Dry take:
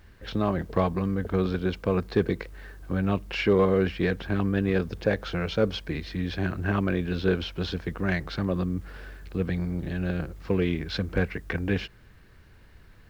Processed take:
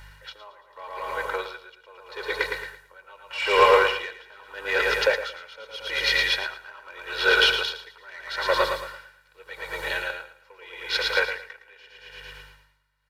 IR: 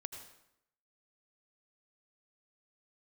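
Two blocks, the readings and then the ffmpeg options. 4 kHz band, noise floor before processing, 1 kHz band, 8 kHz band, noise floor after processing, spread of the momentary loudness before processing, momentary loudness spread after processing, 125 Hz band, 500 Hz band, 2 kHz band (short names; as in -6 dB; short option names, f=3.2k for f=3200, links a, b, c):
+12.0 dB, -53 dBFS, +8.5 dB, n/a, -59 dBFS, 8 LU, 24 LU, -22.0 dB, +0.5 dB, +10.0 dB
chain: -filter_complex "[0:a]highpass=f=700:w=0.5412,highpass=f=700:w=1.3066,aeval=exprs='val(0)+0.00112*(sin(2*PI*50*n/s)+sin(2*PI*2*50*n/s)/2+sin(2*PI*3*50*n/s)/3+sin(2*PI*4*50*n/s)/4+sin(2*PI*5*50*n/s)/5)':c=same,dynaudnorm=f=300:g=21:m=7.5dB,asplit=2[a][b];[b]alimiter=limit=-18dB:level=0:latency=1:release=138,volume=-1dB[c];[a][c]amix=inputs=2:normalize=0,aecho=1:1:2.1:0.92,asoftclip=type=tanh:threshold=-11.5dB,aecho=1:1:112|224|336|448|560|672|784|896:0.531|0.319|0.191|0.115|0.0688|0.0413|0.0248|0.0149,asplit=2[d][e];[1:a]atrim=start_sample=2205,asetrate=48510,aresample=44100[f];[e][f]afir=irnorm=-1:irlink=0,volume=-1dB[g];[d][g]amix=inputs=2:normalize=0,aresample=32000,aresample=44100,aeval=exprs='val(0)*pow(10,-28*(0.5-0.5*cos(2*PI*0.81*n/s))/20)':c=same"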